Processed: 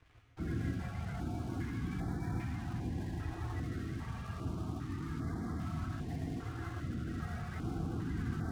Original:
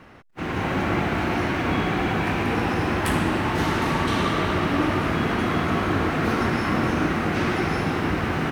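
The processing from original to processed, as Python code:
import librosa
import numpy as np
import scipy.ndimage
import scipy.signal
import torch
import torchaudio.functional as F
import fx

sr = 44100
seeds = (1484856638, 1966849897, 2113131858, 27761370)

y = fx.over_compress(x, sr, threshold_db=-28.0, ratio=-1.0)
y = fx.echo_diffused(y, sr, ms=1071, feedback_pct=41, wet_db=-7)
y = fx.spec_topn(y, sr, count=32)
y = fx.peak_eq(y, sr, hz=720.0, db=9.5, octaves=0.35)
y = fx.comb_fb(y, sr, f0_hz=330.0, decay_s=0.4, harmonics='all', damping=0.0, mix_pct=70)
y = np.sign(y) * np.maximum(np.abs(y) - 10.0 ** (-53.0 / 20.0), 0.0)
y = fx.tone_stack(y, sr, knobs='6-0-2')
y = fx.rev_gated(y, sr, seeds[0], gate_ms=180, shape='rising', drr_db=1.5)
y = fx.filter_held_notch(y, sr, hz=2.5, low_hz=210.0, high_hz=2700.0)
y = y * librosa.db_to_amplitude(17.0)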